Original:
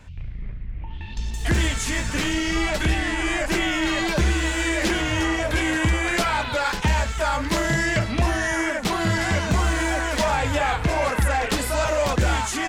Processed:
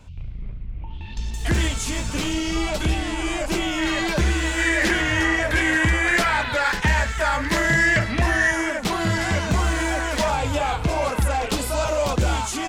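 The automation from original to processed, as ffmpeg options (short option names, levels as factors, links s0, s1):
-af "asetnsamples=n=441:p=0,asendcmd='1.05 equalizer g -1.5;1.68 equalizer g -10;3.78 equalizer g 0.5;4.58 equalizer g 8.5;8.51 equalizer g -0.5;10.3 equalizer g -9',equalizer=f=1800:t=o:w=0.46:g=-11.5"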